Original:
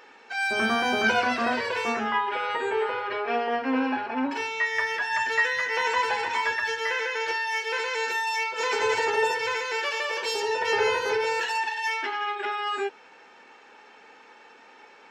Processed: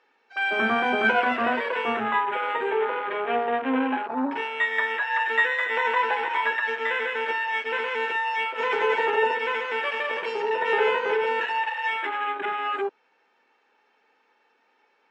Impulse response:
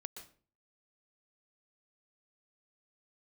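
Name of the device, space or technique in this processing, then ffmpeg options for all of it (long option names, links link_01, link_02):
over-cleaned archive recording: -filter_complex "[0:a]highpass=190,lowpass=5500,afwtdn=0.0282,asettb=1/sr,asplit=3[link_01][link_02][link_03];[link_01]atrim=end=2.734[link_04];[link_02]atrim=start=2.73:end=4,asetpts=PTS-STARTPTS,afade=type=in:duration=0.004:curve=qsin,afade=type=out:start_time=1.266:duration=0.004:curve=qsin,lowpass=frequency=5000:width=0.5412,lowpass=frequency=5000:width=1.3066[link_05];[link_03]atrim=start=3.996[link_06];[link_04][link_05]acrossfade=duration=0.004:curve1=hsin:curve2=qsin[link_07];[link_07][link_06]acrossfade=duration=0.004:curve1=qsin:curve2=hsin,volume=2dB"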